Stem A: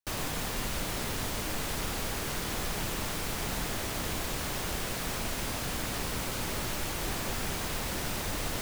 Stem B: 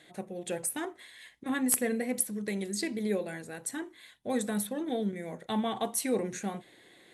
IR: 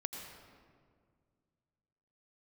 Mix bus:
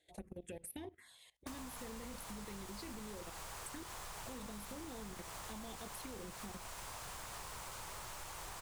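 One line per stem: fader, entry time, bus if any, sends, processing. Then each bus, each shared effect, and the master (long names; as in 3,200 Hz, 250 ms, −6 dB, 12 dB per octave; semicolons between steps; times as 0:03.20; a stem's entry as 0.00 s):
−10.0 dB, 1.40 s, no send, octave-band graphic EQ 250/1,000/8,000 Hz −11/+9/+6 dB
+0.5 dB, 0.00 s, no send, sub-octave generator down 2 octaves, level −6 dB; output level in coarse steps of 19 dB; phaser swept by the level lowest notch 200 Hz, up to 1,400 Hz, full sweep at −36 dBFS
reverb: not used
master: downward compressor 10 to 1, threshold −44 dBFS, peak gain reduction 11 dB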